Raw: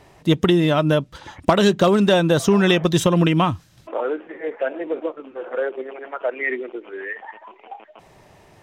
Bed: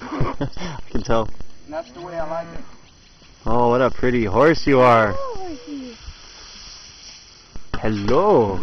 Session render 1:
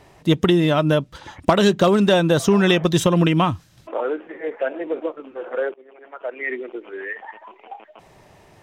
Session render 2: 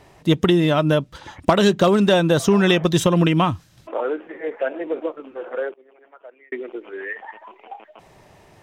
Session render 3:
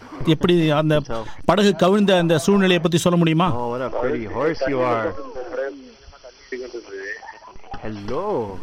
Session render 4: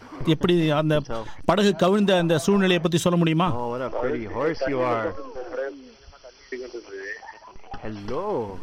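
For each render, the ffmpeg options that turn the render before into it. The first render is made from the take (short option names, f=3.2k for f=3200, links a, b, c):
-filter_complex "[0:a]asplit=2[a][b];[a]atrim=end=5.74,asetpts=PTS-STARTPTS,afade=t=out:st=5.736:d=0.004:c=hsin:silence=0.0707946[c];[b]atrim=start=5.74,asetpts=PTS-STARTPTS,afade=t=in:d=1.05:silence=0.0707946[d];[c][d]concat=n=2:v=0:a=1"
-filter_complex "[0:a]asplit=2[a][b];[a]atrim=end=6.52,asetpts=PTS-STARTPTS,afade=t=out:st=5.35:d=1.17[c];[b]atrim=start=6.52,asetpts=PTS-STARTPTS,afade=t=in:d=0.004:c=hsin[d];[c][d]concat=n=2:v=0:a=1"
-filter_complex "[1:a]volume=-8.5dB[a];[0:a][a]amix=inputs=2:normalize=0"
-af "volume=-3.5dB"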